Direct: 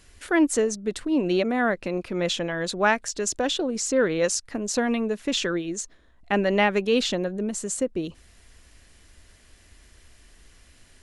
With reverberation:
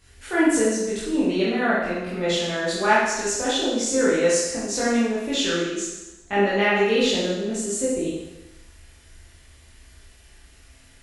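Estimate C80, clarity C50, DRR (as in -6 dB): 3.0 dB, -0.5 dB, -9.5 dB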